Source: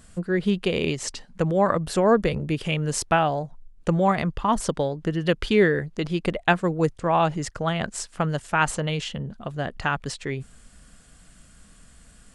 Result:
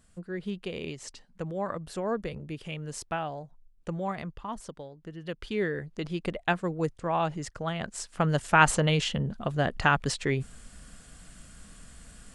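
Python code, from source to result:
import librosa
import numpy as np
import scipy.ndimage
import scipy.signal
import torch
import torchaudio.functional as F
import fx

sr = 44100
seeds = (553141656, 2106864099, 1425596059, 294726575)

y = fx.gain(x, sr, db=fx.line((4.24, -12.0), (4.9, -19.0), (5.96, -7.0), (7.9, -7.0), (8.43, 2.0)))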